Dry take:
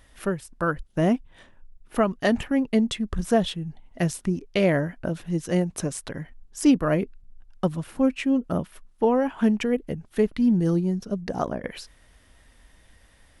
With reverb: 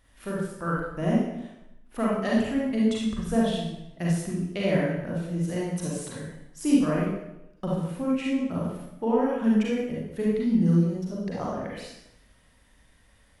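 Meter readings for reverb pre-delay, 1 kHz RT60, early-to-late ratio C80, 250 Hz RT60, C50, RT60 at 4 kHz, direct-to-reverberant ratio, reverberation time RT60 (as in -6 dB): 35 ms, 0.85 s, 3.0 dB, 0.90 s, -2.0 dB, 0.80 s, -5.5 dB, 0.85 s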